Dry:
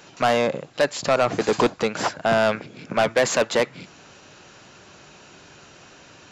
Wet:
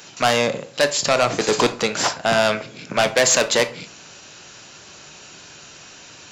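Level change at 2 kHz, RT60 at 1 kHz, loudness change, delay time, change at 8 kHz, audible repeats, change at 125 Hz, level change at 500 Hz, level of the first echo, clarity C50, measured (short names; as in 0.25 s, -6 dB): +4.0 dB, 0.45 s, +3.0 dB, none, +10.5 dB, none, +1.5 dB, +1.0 dB, none, 15.5 dB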